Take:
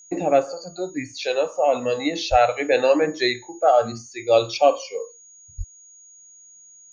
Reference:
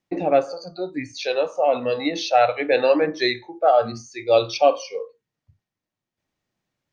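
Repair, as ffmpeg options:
-filter_complex "[0:a]bandreject=f=6700:w=30,asplit=3[s0][s1][s2];[s0]afade=t=out:st=2.3:d=0.02[s3];[s1]highpass=f=140:w=0.5412,highpass=f=140:w=1.3066,afade=t=in:st=2.3:d=0.02,afade=t=out:st=2.42:d=0.02[s4];[s2]afade=t=in:st=2.42:d=0.02[s5];[s3][s4][s5]amix=inputs=3:normalize=0,asplit=3[s6][s7][s8];[s6]afade=t=out:st=5.57:d=0.02[s9];[s7]highpass=f=140:w=0.5412,highpass=f=140:w=1.3066,afade=t=in:st=5.57:d=0.02,afade=t=out:st=5.69:d=0.02[s10];[s8]afade=t=in:st=5.69:d=0.02[s11];[s9][s10][s11]amix=inputs=3:normalize=0"

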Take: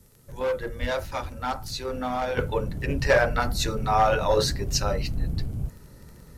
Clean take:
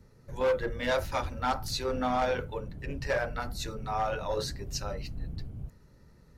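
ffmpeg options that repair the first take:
-filter_complex "[0:a]adeclick=t=4,asplit=3[s0][s1][s2];[s0]afade=t=out:st=0.8:d=0.02[s3];[s1]highpass=f=140:w=0.5412,highpass=f=140:w=1.3066,afade=t=in:st=0.8:d=0.02,afade=t=out:st=0.92:d=0.02[s4];[s2]afade=t=in:st=0.92:d=0.02[s5];[s3][s4][s5]amix=inputs=3:normalize=0,asplit=3[s6][s7][s8];[s6]afade=t=out:st=2.85:d=0.02[s9];[s7]highpass=f=140:w=0.5412,highpass=f=140:w=1.3066,afade=t=in:st=2.85:d=0.02,afade=t=out:st=2.97:d=0.02[s10];[s8]afade=t=in:st=2.97:d=0.02[s11];[s9][s10][s11]amix=inputs=3:normalize=0,agate=range=0.0891:threshold=0.0112,asetnsamples=n=441:p=0,asendcmd='2.37 volume volume -10dB',volume=1"

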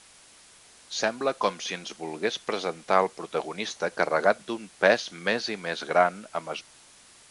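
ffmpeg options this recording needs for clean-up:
-af "afwtdn=0.0028"

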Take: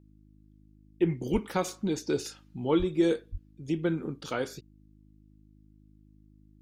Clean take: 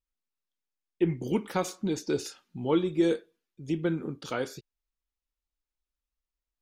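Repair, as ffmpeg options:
-filter_complex "[0:a]bandreject=f=51.9:t=h:w=4,bandreject=f=103.8:t=h:w=4,bandreject=f=155.7:t=h:w=4,bandreject=f=207.6:t=h:w=4,bandreject=f=259.5:t=h:w=4,bandreject=f=311.4:t=h:w=4,asplit=3[s0][s1][s2];[s0]afade=t=out:st=1.32:d=0.02[s3];[s1]highpass=f=140:w=0.5412,highpass=f=140:w=1.3066,afade=t=in:st=1.32:d=0.02,afade=t=out:st=1.44:d=0.02[s4];[s2]afade=t=in:st=1.44:d=0.02[s5];[s3][s4][s5]amix=inputs=3:normalize=0,asplit=3[s6][s7][s8];[s6]afade=t=out:st=2.78:d=0.02[s9];[s7]highpass=f=140:w=0.5412,highpass=f=140:w=1.3066,afade=t=in:st=2.78:d=0.02,afade=t=out:st=2.9:d=0.02[s10];[s8]afade=t=in:st=2.9:d=0.02[s11];[s9][s10][s11]amix=inputs=3:normalize=0,asplit=3[s12][s13][s14];[s12]afade=t=out:st=3.31:d=0.02[s15];[s13]highpass=f=140:w=0.5412,highpass=f=140:w=1.3066,afade=t=in:st=3.31:d=0.02,afade=t=out:st=3.43:d=0.02[s16];[s14]afade=t=in:st=3.43:d=0.02[s17];[s15][s16][s17]amix=inputs=3:normalize=0"

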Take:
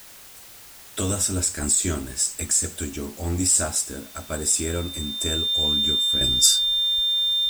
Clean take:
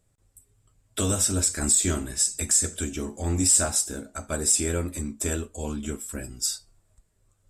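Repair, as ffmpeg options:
-af "bandreject=f=3600:w=30,afwtdn=0.0056,asetnsamples=n=441:p=0,asendcmd='6.21 volume volume -10dB',volume=1"

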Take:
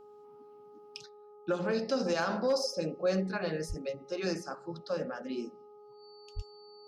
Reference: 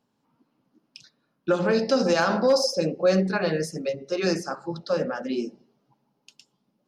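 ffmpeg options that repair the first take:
-filter_complex "[0:a]bandreject=f=416.4:t=h:w=4,bandreject=f=832.8:t=h:w=4,bandreject=f=1249.2:t=h:w=4,bandreject=f=4500:w=30,asplit=3[s0][s1][s2];[s0]afade=t=out:st=3.68:d=0.02[s3];[s1]highpass=f=140:w=0.5412,highpass=f=140:w=1.3066,afade=t=in:st=3.68:d=0.02,afade=t=out:st=3.8:d=0.02[s4];[s2]afade=t=in:st=3.8:d=0.02[s5];[s3][s4][s5]amix=inputs=3:normalize=0,asplit=3[s6][s7][s8];[s6]afade=t=out:st=6.35:d=0.02[s9];[s7]highpass=f=140:w=0.5412,highpass=f=140:w=1.3066,afade=t=in:st=6.35:d=0.02,afade=t=out:st=6.47:d=0.02[s10];[s8]afade=t=in:st=6.47:d=0.02[s11];[s9][s10][s11]amix=inputs=3:normalize=0,asetnsamples=n=441:p=0,asendcmd='1.06 volume volume 9dB',volume=1"

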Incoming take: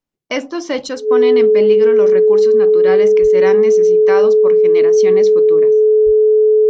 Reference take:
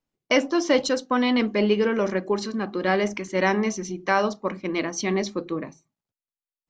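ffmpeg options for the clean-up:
-filter_complex "[0:a]bandreject=f=430:w=30,asplit=3[s0][s1][s2];[s0]afade=t=out:st=3.21:d=0.02[s3];[s1]highpass=f=140:w=0.5412,highpass=f=140:w=1.3066,afade=t=in:st=3.21:d=0.02,afade=t=out:st=3.33:d=0.02[s4];[s2]afade=t=in:st=3.33:d=0.02[s5];[s3][s4][s5]amix=inputs=3:normalize=0,asplit=3[s6][s7][s8];[s6]afade=t=out:st=6.05:d=0.02[s9];[s7]highpass=f=140:w=0.5412,highpass=f=140:w=1.3066,afade=t=in:st=6.05:d=0.02,afade=t=out:st=6.17:d=0.02[s10];[s8]afade=t=in:st=6.17:d=0.02[s11];[s9][s10][s11]amix=inputs=3:normalize=0"

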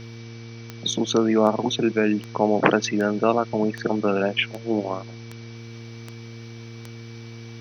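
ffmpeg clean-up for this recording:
-af "adeclick=t=4,bandreject=f=115.1:t=h:w=4,bandreject=f=230.2:t=h:w=4,bandreject=f=345.3:t=h:w=4,bandreject=f=460.4:t=h:w=4,bandreject=f=2300:w=30,afwtdn=0.0056"

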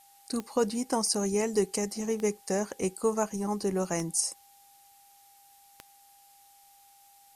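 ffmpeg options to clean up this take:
-af "adeclick=t=4,bandreject=f=800:w=30,afftdn=nr=17:nf=-58"

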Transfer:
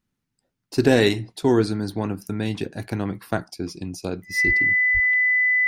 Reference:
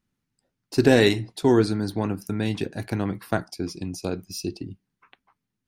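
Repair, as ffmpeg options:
-filter_complex "[0:a]bandreject=f=2000:w=30,asplit=3[s0][s1][s2];[s0]afade=t=out:st=4.46:d=0.02[s3];[s1]highpass=f=140:w=0.5412,highpass=f=140:w=1.3066,afade=t=in:st=4.46:d=0.02,afade=t=out:st=4.58:d=0.02[s4];[s2]afade=t=in:st=4.58:d=0.02[s5];[s3][s4][s5]amix=inputs=3:normalize=0,asplit=3[s6][s7][s8];[s6]afade=t=out:st=4.93:d=0.02[s9];[s7]highpass=f=140:w=0.5412,highpass=f=140:w=1.3066,afade=t=in:st=4.93:d=0.02,afade=t=out:st=5.05:d=0.02[s10];[s8]afade=t=in:st=5.05:d=0.02[s11];[s9][s10][s11]amix=inputs=3:normalize=0"

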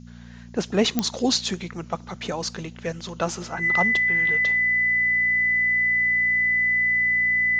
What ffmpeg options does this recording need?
-af "adeclick=t=4,bandreject=f=59:t=h:w=4,bandreject=f=118:t=h:w=4,bandreject=f=177:t=h:w=4,bandreject=f=236:t=h:w=4,bandreject=f=2000:w=30,agate=range=0.0891:threshold=0.02"

